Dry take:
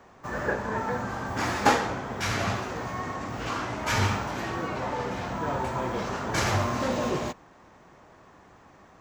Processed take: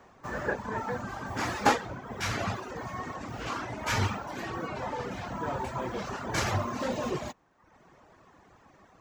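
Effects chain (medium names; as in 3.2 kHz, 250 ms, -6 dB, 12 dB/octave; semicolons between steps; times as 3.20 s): reverb removal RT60 0.87 s; trim -2 dB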